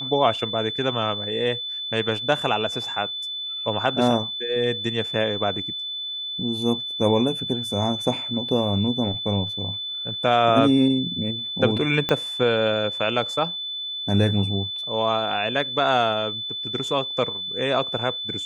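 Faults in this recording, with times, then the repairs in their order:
tone 3500 Hz -28 dBFS
12.09 pop -9 dBFS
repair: de-click; notch 3500 Hz, Q 30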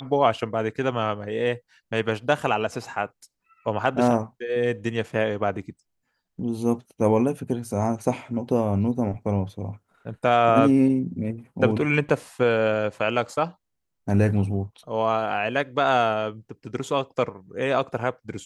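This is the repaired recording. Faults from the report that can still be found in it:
12.09 pop

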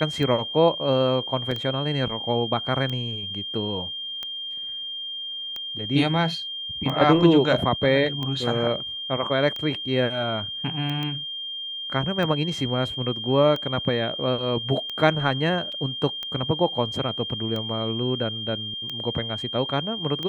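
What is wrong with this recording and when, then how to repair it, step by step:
tick 45 rpm -18 dBFS
tone 3200 Hz -30 dBFS
1.51 gap 4.9 ms
11.03 pop -18 dBFS
15.72 gap 4.9 ms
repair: de-click; notch 3200 Hz, Q 30; interpolate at 1.51, 4.9 ms; interpolate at 15.72, 4.9 ms

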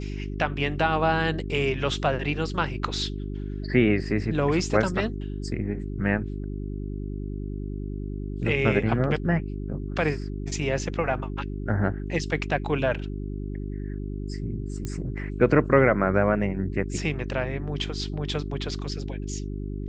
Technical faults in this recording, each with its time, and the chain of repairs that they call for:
hum 50 Hz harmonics 8 -32 dBFS
14.85 pop -18 dBFS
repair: de-click; de-hum 50 Hz, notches 8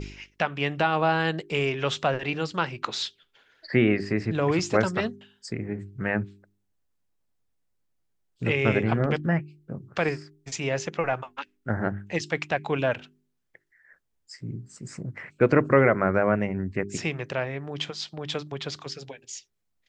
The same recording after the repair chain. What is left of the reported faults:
none

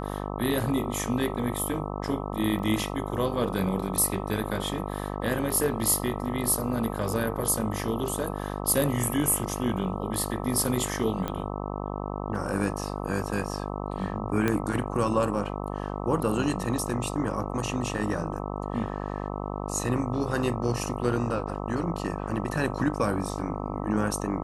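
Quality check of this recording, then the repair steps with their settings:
buzz 50 Hz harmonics 26 -33 dBFS
2.59 gap 2.6 ms
11.28 pop -17 dBFS
14.48 pop -12 dBFS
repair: de-click; de-hum 50 Hz, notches 26; interpolate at 2.59, 2.6 ms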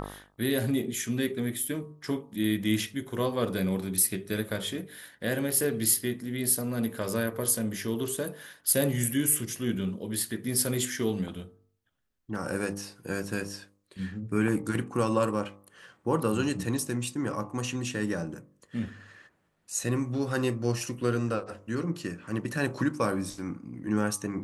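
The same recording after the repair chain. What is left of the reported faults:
none

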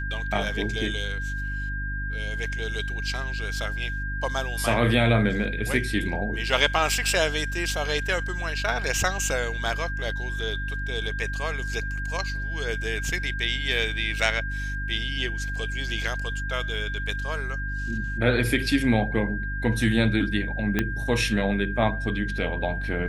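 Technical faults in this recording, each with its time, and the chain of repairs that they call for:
hum 50 Hz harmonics 6 -31 dBFS
tone 1600 Hz -32 dBFS
20.79 pop -9 dBFS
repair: de-click; notch 1600 Hz, Q 30; de-hum 50 Hz, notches 6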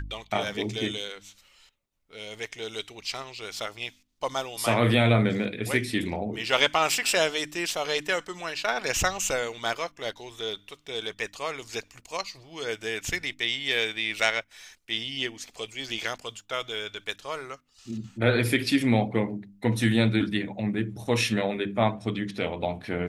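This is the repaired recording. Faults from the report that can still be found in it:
20.79 pop

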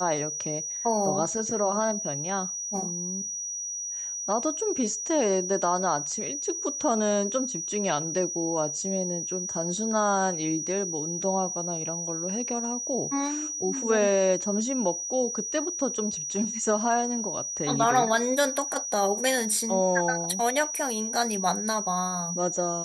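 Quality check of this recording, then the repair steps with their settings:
tone 5800 Hz -31 dBFS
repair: notch 5800 Hz, Q 30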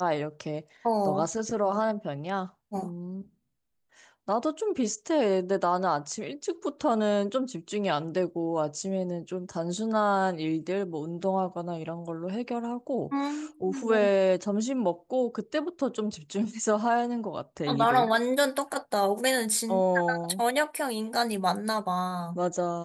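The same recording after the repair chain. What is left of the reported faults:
none

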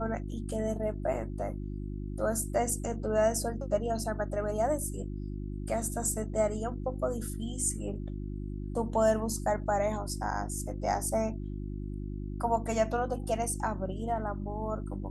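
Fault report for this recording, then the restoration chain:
hum 50 Hz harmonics 7 -37 dBFS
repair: de-hum 50 Hz, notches 7

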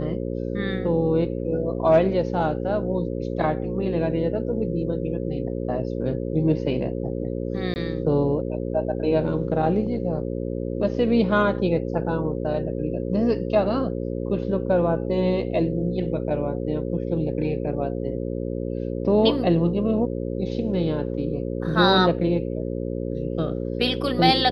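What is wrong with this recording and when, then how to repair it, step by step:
buzz 60 Hz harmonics 9 -28 dBFS
7.74–7.76 gap 19 ms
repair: de-hum 60 Hz, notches 9; interpolate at 7.74, 19 ms

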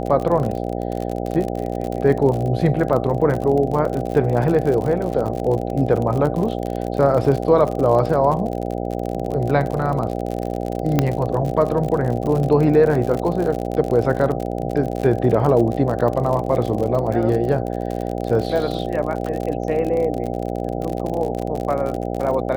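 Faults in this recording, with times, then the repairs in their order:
buzz 60 Hz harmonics 13 -25 dBFS
crackle 51/s -24 dBFS
10.99 pop -3 dBFS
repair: de-click; de-hum 60 Hz, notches 13

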